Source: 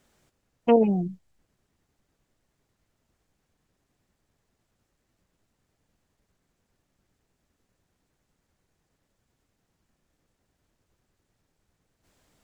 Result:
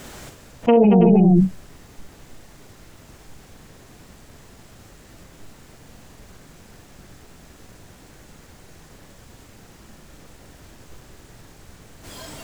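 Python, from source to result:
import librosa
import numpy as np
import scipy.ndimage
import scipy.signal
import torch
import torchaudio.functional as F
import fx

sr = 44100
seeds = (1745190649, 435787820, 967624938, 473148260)

p1 = fx.noise_reduce_blind(x, sr, reduce_db=13)
p2 = p1 + fx.echo_multitap(p1, sr, ms=(43, 62, 227, 327), db=(-7.5, -11.5, -12.5, -18.0), dry=0)
y = fx.env_flatten(p2, sr, amount_pct=100)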